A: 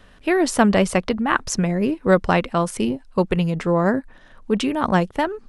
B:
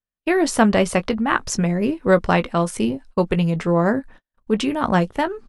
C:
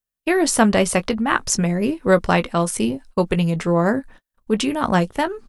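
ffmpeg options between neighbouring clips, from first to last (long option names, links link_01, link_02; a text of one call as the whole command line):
ffmpeg -i in.wav -filter_complex "[0:a]asplit=2[link_01][link_02];[link_02]adelay=18,volume=-11.5dB[link_03];[link_01][link_03]amix=inputs=2:normalize=0,agate=range=-46dB:threshold=-40dB:ratio=16:detection=peak" out.wav
ffmpeg -i in.wav -af "highshelf=frequency=6000:gain=10" out.wav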